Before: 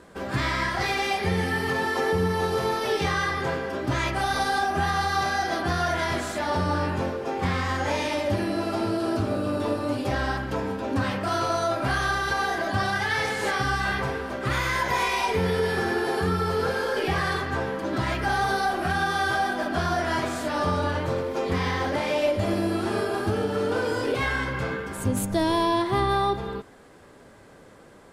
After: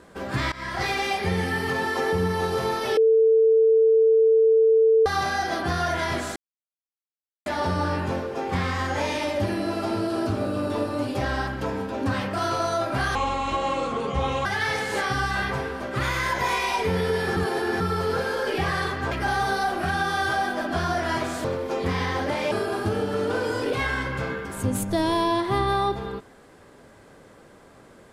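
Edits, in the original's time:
0.52–0.82 s: fade in, from -20 dB
2.97–5.06 s: bleep 446 Hz -14 dBFS
6.36 s: insert silence 1.10 s
12.05–12.95 s: speed 69%
15.86–16.30 s: reverse
17.61–18.13 s: delete
20.46–21.10 s: delete
22.17–22.93 s: delete

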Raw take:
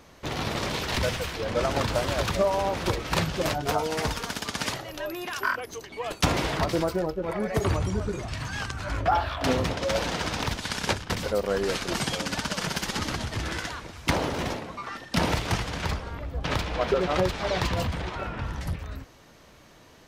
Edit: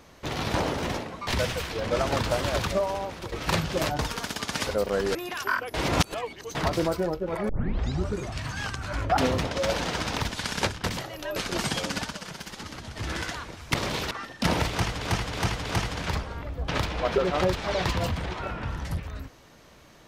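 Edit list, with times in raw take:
0.54–0.91 s: swap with 14.10–14.83 s
2.20–2.96 s: fade out linear, to -13 dB
3.63–4.05 s: delete
4.73–5.11 s: swap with 11.24–11.72 s
5.70–6.51 s: reverse
7.45 s: tape start 0.60 s
9.13–9.43 s: delete
12.33–13.45 s: dip -9.5 dB, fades 0.31 s quadratic
15.42–15.74 s: loop, 4 plays

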